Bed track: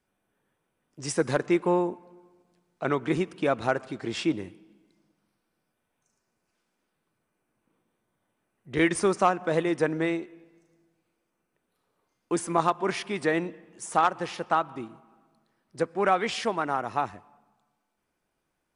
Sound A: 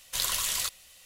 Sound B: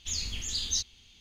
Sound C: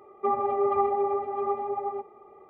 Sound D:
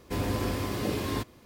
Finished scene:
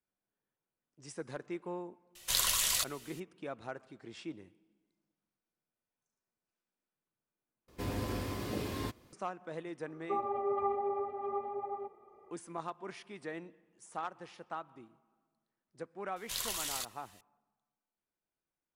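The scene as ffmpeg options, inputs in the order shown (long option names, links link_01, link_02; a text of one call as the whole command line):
ffmpeg -i bed.wav -i cue0.wav -i cue1.wav -i cue2.wav -i cue3.wav -filter_complex "[1:a]asplit=2[link_01][link_02];[0:a]volume=-17dB,asplit=2[link_03][link_04];[link_03]atrim=end=7.684[link_05];[4:a]atrim=end=1.45,asetpts=PTS-STARTPTS,volume=-7dB[link_06];[link_04]atrim=start=9.126[link_07];[link_01]atrim=end=1.05,asetpts=PTS-STARTPTS,volume=-1dB,afade=type=in:duration=0.004:curve=hsin,afade=type=out:start_time=1.046:duration=0.004:curve=hsin,adelay=2150[link_08];[3:a]atrim=end=2.49,asetpts=PTS-STARTPTS,volume=-8.5dB,afade=type=in:duration=0.004:curve=hsin,afade=type=out:start_time=2.486:duration=0.004:curve=hsin,adelay=434826S[link_09];[link_02]atrim=end=1.05,asetpts=PTS-STARTPTS,volume=-8.5dB,afade=type=in:duration=0.004:curve=hsin,afade=type=out:start_time=1.046:duration=0.004:curve=hsin,adelay=16160[link_10];[link_05][link_06]acrossfade=duration=0.004:curve1=hsin:curve2=hsin[link_11];[link_11][link_07]acrossfade=duration=0.004:curve1=hsin:curve2=hsin[link_12];[link_12][link_08][link_09][link_10]amix=inputs=4:normalize=0" out.wav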